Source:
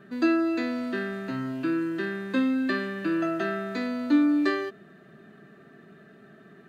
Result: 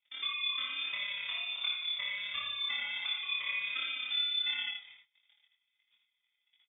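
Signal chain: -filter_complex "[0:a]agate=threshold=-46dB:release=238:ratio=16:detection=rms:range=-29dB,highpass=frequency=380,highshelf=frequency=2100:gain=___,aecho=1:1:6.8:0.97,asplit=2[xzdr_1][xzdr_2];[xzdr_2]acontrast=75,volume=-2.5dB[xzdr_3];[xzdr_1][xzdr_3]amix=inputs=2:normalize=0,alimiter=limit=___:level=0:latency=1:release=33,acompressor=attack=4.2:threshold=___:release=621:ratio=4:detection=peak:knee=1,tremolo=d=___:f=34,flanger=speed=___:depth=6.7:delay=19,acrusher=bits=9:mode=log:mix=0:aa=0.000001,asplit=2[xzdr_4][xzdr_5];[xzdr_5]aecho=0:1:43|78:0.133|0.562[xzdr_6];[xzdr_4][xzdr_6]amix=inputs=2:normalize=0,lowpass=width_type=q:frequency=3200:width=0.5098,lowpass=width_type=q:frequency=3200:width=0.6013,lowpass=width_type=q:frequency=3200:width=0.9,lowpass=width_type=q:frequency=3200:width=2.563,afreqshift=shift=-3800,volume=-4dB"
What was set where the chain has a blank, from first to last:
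-4, -13.5dB, -22dB, 0.71, 1.4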